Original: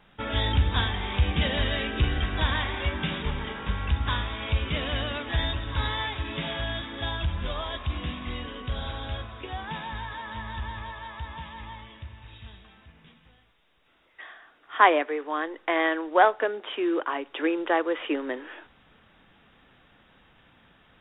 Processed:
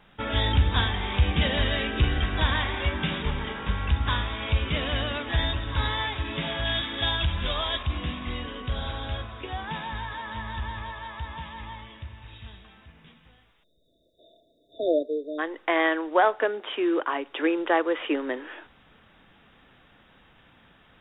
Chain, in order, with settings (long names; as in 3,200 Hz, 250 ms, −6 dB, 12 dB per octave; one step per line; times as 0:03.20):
0:06.65–0:07.83: high-shelf EQ 2,600 Hz +11 dB
0:13.64–0:15.39: time-frequency box erased 710–3,500 Hz
boost into a limiter +10 dB
level −8.5 dB